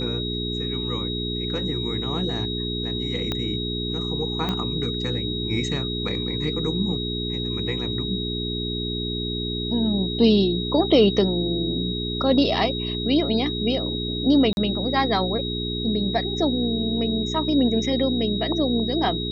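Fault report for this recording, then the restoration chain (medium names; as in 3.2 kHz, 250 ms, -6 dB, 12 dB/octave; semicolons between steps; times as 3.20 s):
hum 60 Hz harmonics 7 -29 dBFS
whine 3.8 kHz -29 dBFS
3.32 s: pop -12 dBFS
4.49 s: pop -13 dBFS
14.53–14.57 s: dropout 41 ms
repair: de-click; band-stop 3.8 kHz, Q 30; de-hum 60 Hz, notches 7; interpolate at 14.53 s, 41 ms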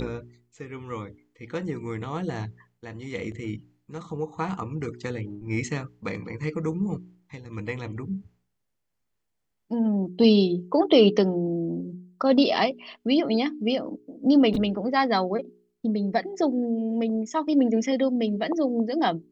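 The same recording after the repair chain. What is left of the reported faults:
3.32 s: pop
4.49 s: pop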